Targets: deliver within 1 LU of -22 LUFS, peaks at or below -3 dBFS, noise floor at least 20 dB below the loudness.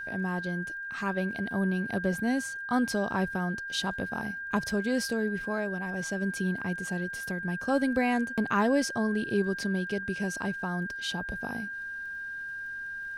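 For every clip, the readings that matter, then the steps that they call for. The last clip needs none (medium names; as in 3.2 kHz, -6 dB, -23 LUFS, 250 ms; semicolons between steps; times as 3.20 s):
tick rate 24 per s; steady tone 1.6 kHz; tone level -35 dBFS; loudness -30.5 LUFS; peak level -14.0 dBFS; loudness target -22.0 LUFS
-> de-click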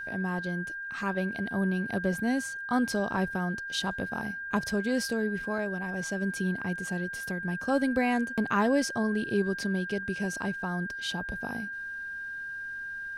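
tick rate 0.15 per s; steady tone 1.6 kHz; tone level -35 dBFS
-> band-stop 1.6 kHz, Q 30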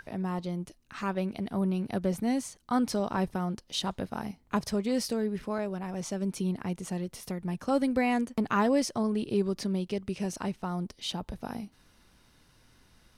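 steady tone not found; loudness -31.5 LUFS; peak level -14.5 dBFS; loudness target -22.0 LUFS
-> trim +9.5 dB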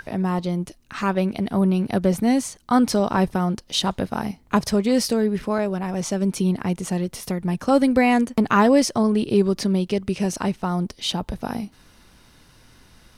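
loudness -22.0 LUFS; peak level -5.0 dBFS; noise floor -54 dBFS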